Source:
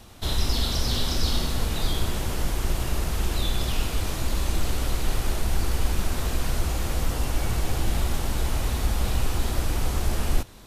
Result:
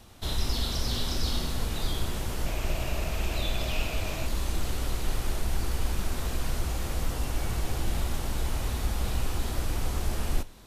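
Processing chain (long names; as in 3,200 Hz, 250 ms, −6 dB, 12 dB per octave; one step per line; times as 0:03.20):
0:02.46–0:04.26: thirty-one-band graphic EQ 630 Hz +9 dB, 2,500 Hz +9 dB, 10,000 Hz −5 dB
on a send: convolution reverb RT60 0.30 s, pre-delay 21 ms, DRR 16 dB
on the sum: level −4.5 dB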